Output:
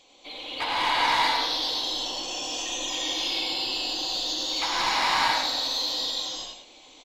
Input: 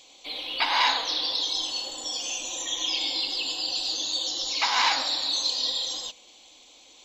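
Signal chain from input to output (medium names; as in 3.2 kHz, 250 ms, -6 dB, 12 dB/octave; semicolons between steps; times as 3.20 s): on a send: delay 103 ms -7.5 dB; on the sum: saturation -20 dBFS, distortion -14 dB; treble shelf 3.4 kHz -11 dB; gated-style reverb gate 450 ms rising, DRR -5.5 dB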